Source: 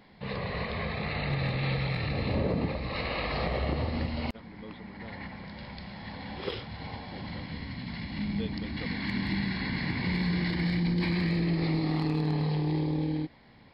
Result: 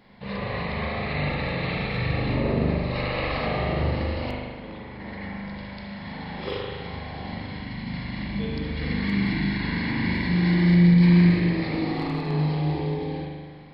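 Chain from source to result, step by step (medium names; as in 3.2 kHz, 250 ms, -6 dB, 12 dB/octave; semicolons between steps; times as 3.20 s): spring tank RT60 1.6 s, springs 40 ms, chirp 35 ms, DRR -3.5 dB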